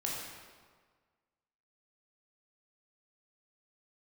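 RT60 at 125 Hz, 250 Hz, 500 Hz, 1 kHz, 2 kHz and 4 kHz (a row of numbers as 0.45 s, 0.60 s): 1.6 s, 1.5 s, 1.6 s, 1.6 s, 1.3 s, 1.1 s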